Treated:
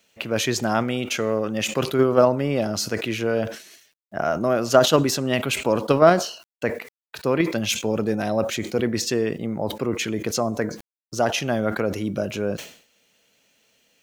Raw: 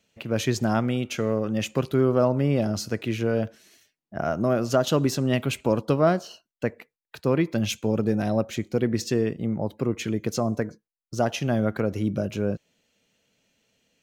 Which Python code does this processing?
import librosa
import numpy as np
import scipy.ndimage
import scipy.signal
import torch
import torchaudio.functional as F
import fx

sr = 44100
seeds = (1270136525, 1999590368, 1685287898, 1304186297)

p1 = fx.level_steps(x, sr, step_db=19)
p2 = x + F.gain(torch.from_numpy(p1), -0.5).numpy()
p3 = fx.low_shelf(p2, sr, hz=260.0, db=-11.5)
p4 = fx.quant_dither(p3, sr, seeds[0], bits=12, dither='none')
p5 = fx.sustainer(p4, sr, db_per_s=110.0)
y = F.gain(torch.from_numpy(p5), 3.5).numpy()